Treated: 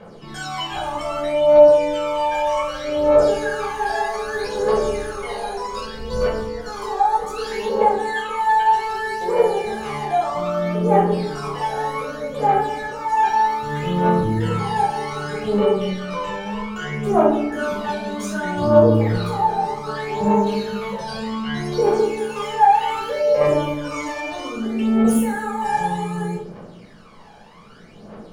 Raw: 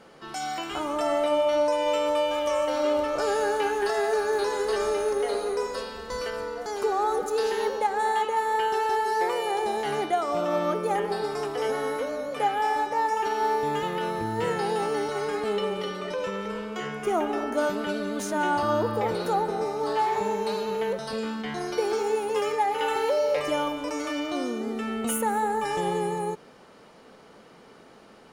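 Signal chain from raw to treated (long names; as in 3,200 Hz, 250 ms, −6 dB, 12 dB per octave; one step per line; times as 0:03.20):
parametric band 13,000 Hz −4 dB 1.1 octaves
in parallel at +2 dB: brickwall limiter −22 dBFS, peak gain reduction 7.5 dB
on the sum: phase shifter 0.64 Hz, delay 1.3 ms, feedback 74%
rectangular room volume 620 cubic metres, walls furnished, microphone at 5.5 metres
level −12 dB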